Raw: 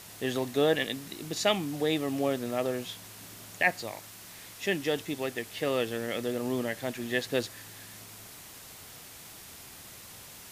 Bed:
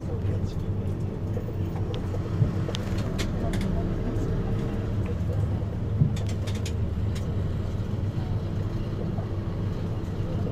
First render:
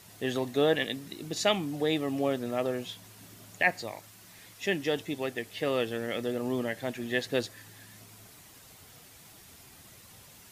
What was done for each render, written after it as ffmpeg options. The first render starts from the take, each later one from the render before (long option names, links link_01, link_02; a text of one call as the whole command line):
ffmpeg -i in.wav -af "afftdn=noise_reduction=7:noise_floor=-48" out.wav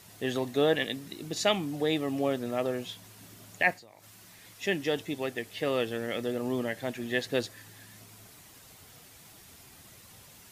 ffmpeg -i in.wav -filter_complex "[0:a]asettb=1/sr,asplit=3[link_01][link_02][link_03];[link_01]atrim=end=3.734[link_04];[link_02]atrim=start=3.73:end=4.45,asetpts=PTS-STARTPTS,afade=type=in:duration=0.004:curve=qsin,afade=type=out:start_time=0.716:duration=0.004:curve=qsin,acompressor=threshold=-48dB:ratio=12:attack=3.2:release=140:knee=1:detection=peak[link_05];[link_03]atrim=start=4.446[link_06];[link_04][link_05]acrossfade=duration=0.004:curve1=hsin:curve2=qsin[link_07];[link_07][link_06]acrossfade=duration=0.004:curve1=qsin:curve2=hsin" out.wav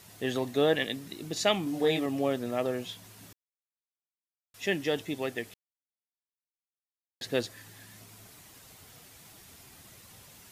ffmpeg -i in.wav -filter_complex "[0:a]asettb=1/sr,asplit=3[link_01][link_02][link_03];[link_01]atrim=end=1.644[link_04];[link_02]atrim=start=1.64:end=2.06,asetpts=PTS-STARTPTS,afade=type=in:duration=0.004:curve=qsin,afade=type=out:start_time=0.416:duration=0.004:curve=qsin,asplit=2[link_05][link_06];[link_06]adelay=24,volume=-3.5dB[link_07];[link_05][link_07]amix=inputs=2:normalize=0,atrim=end_sample=18522[link_08];[link_03]atrim=start=2.056[link_09];[link_04][link_08]acrossfade=duration=0.004:curve1=hsin:curve2=qsin[link_10];[link_10][link_09]acrossfade=duration=0.004:curve1=qsin:curve2=hsin,asplit=5[link_11][link_12][link_13][link_14][link_15];[link_11]atrim=end=3.33,asetpts=PTS-STARTPTS,afade=type=out:start_time=3.326:duration=0.004:curve=hsin[link_16];[link_12]atrim=start=3.33:end=4.54,asetpts=PTS-STARTPTS,volume=0[link_17];[link_13]atrim=start=4.54:end=5.54,asetpts=PTS-STARTPTS,afade=type=in:duration=0.004:curve=hsin,afade=type=out:start_time=0.996:duration=0.004:curve=hsin[link_18];[link_14]atrim=start=5.54:end=7.21,asetpts=PTS-STARTPTS,volume=0[link_19];[link_15]atrim=start=7.21,asetpts=PTS-STARTPTS,afade=type=in:duration=0.004:curve=hsin[link_20];[link_16][link_17][link_18][link_19][link_20]concat=n=5:v=0:a=1" out.wav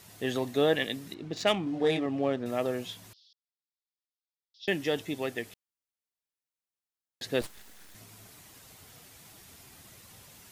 ffmpeg -i in.wav -filter_complex "[0:a]asettb=1/sr,asplit=3[link_01][link_02][link_03];[link_01]atrim=end=1.144[link_04];[link_02]atrim=start=1.14:end=2.46,asetpts=PTS-STARTPTS,afade=type=in:duration=0.004:curve=qsin,afade=type=out:start_time=1.316:duration=0.004:curve=qsin,adynamicsmooth=sensitivity=3.5:basefreq=3000[link_05];[link_03]atrim=start=2.456[link_06];[link_04][link_05]acrossfade=duration=0.004:curve1=hsin:curve2=qsin[link_07];[link_07][link_06]acrossfade=duration=0.004:curve1=qsin:curve2=hsin,asettb=1/sr,asplit=3[link_08][link_09][link_10];[link_08]atrim=end=3.134[link_11];[link_09]atrim=start=3.13:end=4.68,asetpts=PTS-STARTPTS,afade=type=in:duration=0.004:curve=qsin,afade=type=out:start_time=1.546:duration=0.004:curve=qsin,asuperpass=centerf=4200:order=8:qfactor=2[link_12];[link_10]atrim=start=4.676[link_13];[link_11][link_12]acrossfade=duration=0.004:curve1=hsin:curve2=qsin[link_14];[link_14][link_13]acrossfade=duration=0.004:curve1=qsin:curve2=hsin,asettb=1/sr,asplit=3[link_15][link_16][link_17];[link_15]atrim=end=7.414[link_18];[link_16]atrim=start=7.41:end=7.95,asetpts=PTS-STARTPTS,afade=type=in:duration=0.004:curve=qsin,afade=type=out:start_time=0.536:duration=0.004:curve=qsin,aeval=exprs='abs(val(0))':channel_layout=same[link_19];[link_17]atrim=start=7.946[link_20];[link_18][link_19]acrossfade=duration=0.004:curve1=hsin:curve2=qsin[link_21];[link_21][link_20]acrossfade=duration=0.004:curve1=qsin:curve2=hsin" out.wav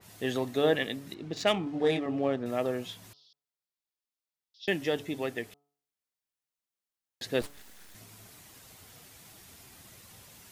ffmpeg -i in.wav -af "bandreject=frequency=143.1:width_type=h:width=4,bandreject=frequency=286.2:width_type=h:width=4,bandreject=frequency=429.3:width_type=h:width=4,bandreject=frequency=572.4:width_type=h:width=4,bandreject=frequency=715.5:width_type=h:width=4,bandreject=frequency=858.6:width_type=h:width=4,bandreject=frequency=1001.7:width_type=h:width=4,bandreject=frequency=1144.8:width_type=h:width=4,bandreject=frequency=1287.9:width_type=h:width=4,adynamicequalizer=threshold=0.00631:dfrequency=2600:dqfactor=0.7:tfrequency=2600:tqfactor=0.7:attack=5:release=100:ratio=0.375:range=3:mode=cutabove:tftype=highshelf" out.wav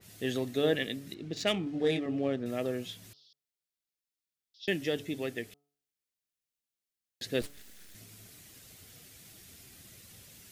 ffmpeg -i in.wav -af "equalizer=frequency=940:width=1.3:gain=-10.5" out.wav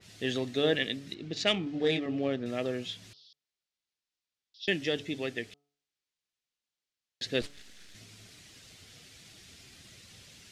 ffmpeg -i in.wav -af "lowpass=4600,highshelf=frequency=2700:gain=9.5" out.wav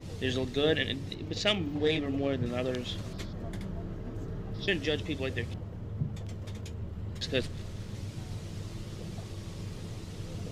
ffmpeg -i in.wav -i bed.wav -filter_complex "[1:a]volume=-11dB[link_01];[0:a][link_01]amix=inputs=2:normalize=0" out.wav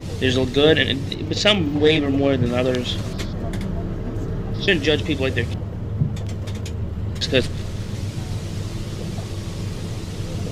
ffmpeg -i in.wav -af "volume=12dB,alimiter=limit=-1dB:level=0:latency=1" out.wav